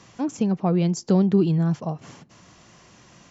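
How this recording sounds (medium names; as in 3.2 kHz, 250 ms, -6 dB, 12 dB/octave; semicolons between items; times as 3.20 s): noise floor -53 dBFS; spectral tilt -7.0 dB/octave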